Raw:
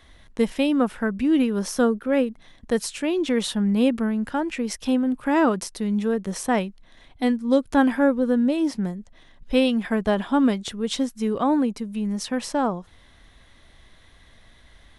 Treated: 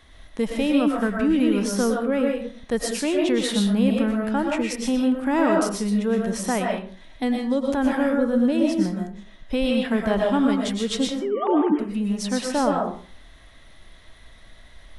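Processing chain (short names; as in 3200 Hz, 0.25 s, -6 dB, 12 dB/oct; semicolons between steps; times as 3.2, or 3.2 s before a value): 11.07–11.79 sine-wave speech; limiter -14 dBFS, peak gain reduction 8 dB; digital reverb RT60 0.44 s, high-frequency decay 0.7×, pre-delay 80 ms, DRR 0 dB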